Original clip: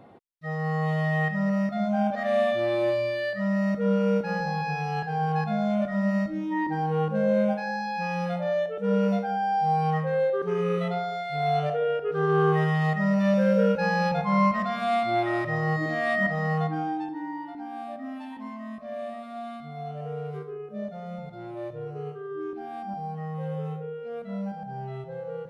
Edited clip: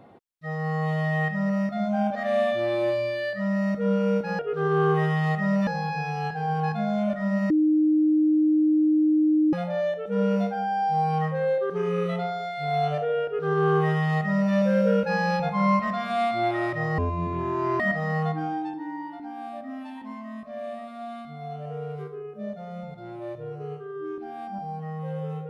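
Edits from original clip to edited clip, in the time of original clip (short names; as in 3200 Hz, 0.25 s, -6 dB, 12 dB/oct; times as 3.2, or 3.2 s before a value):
6.22–8.25 bleep 308 Hz -17 dBFS
11.97–13.25 copy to 4.39
15.7–16.15 speed 55%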